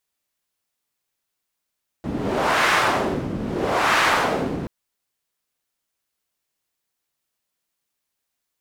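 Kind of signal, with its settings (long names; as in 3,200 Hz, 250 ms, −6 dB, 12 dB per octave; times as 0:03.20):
wind from filtered noise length 2.63 s, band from 210 Hz, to 1,500 Hz, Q 1.2, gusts 2, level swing 9.5 dB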